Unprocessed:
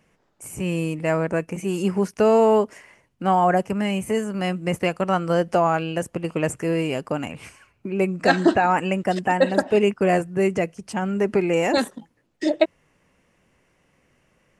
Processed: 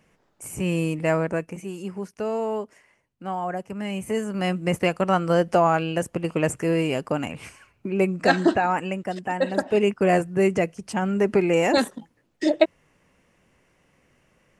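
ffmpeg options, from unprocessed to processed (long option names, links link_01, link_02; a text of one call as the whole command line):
ffmpeg -i in.wav -af "volume=20dB,afade=type=out:start_time=1.06:duration=0.7:silence=0.281838,afade=type=in:start_time=3.64:duration=0.89:silence=0.281838,afade=type=out:start_time=7.96:duration=1.23:silence=0.375837,afade=type=in:start_time=9.19:duration=1.03:silence=0.375837" out.wav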